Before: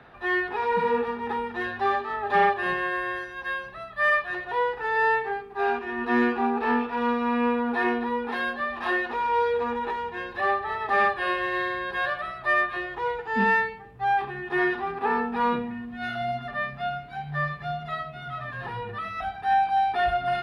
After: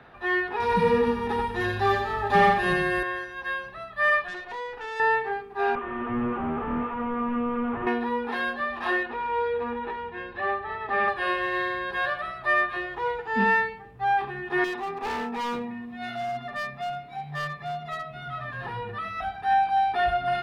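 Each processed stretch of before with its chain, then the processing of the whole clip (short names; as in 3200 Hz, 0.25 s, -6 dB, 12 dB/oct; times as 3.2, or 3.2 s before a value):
0.6–3.03 tone controls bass +13 dB, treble +11 dB + echo 86 ms -5 dB
4.28–5 bell 140 Hz -13.5 dB 0.42 oct + compressor 2.5:1, threshold -27 dBFS + tube stage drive 30 dB, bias 0.65
5.75–7.87 delta modulation 16 kbps, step -43 dBFS + bell 1200 Hz +11.5 dB 0.35 oct
9.03–11.08 LPF 3000 Hz + bell 900 Hz -4 dB 2.1 oct
14.64–18.11 notch comb 1500 Hz + hard clip -27.5 dBFS + mismatched tape noise reduction encoder only
whole clip: dry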